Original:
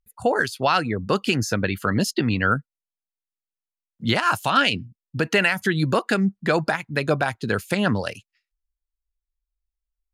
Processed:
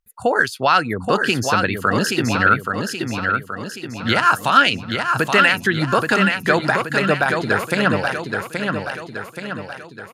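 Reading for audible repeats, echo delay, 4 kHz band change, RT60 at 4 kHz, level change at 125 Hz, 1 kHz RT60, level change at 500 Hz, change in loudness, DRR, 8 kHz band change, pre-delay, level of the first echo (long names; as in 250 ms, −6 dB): 6, 826 ms, +4.5 dB, no reverb audible, +1.5 dB, no reverb audible, +3.5 dB, +4.0 dB, no reverb audible, +4.0 dB, no reverb audible, −5.0 dB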